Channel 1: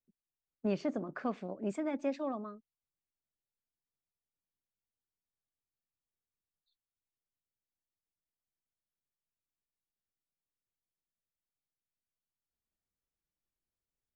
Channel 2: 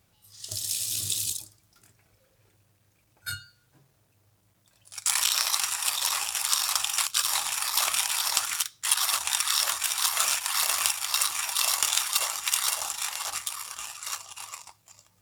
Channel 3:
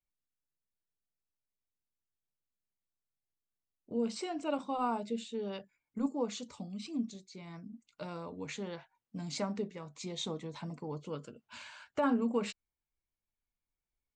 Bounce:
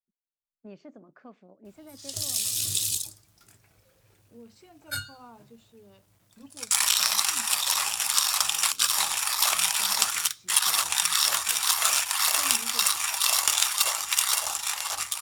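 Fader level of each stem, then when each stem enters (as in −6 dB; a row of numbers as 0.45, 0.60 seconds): −13.0, +2.0, −16.0 decibels; 0.00, 1.65, 0.40 seconds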